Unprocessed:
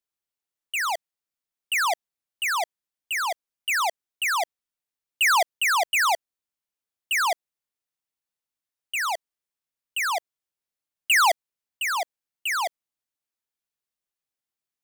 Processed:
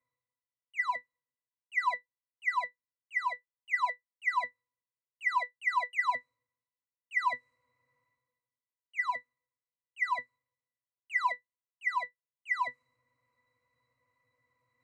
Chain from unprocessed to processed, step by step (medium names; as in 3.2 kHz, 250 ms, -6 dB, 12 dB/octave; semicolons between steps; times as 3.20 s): graphic EQ 250/1000/2000/4000/8000 Hz -8/+4/+8/-5/+9 dB; peak limiter -13.5 dBFS, peak gain reduction 6.5 dB; reverse; upward compressor, threshold -33 dBFS; reverse; pitch-class resonator B, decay 0.12 s; tape noise reduction on one side only decoder only; trim +3 dB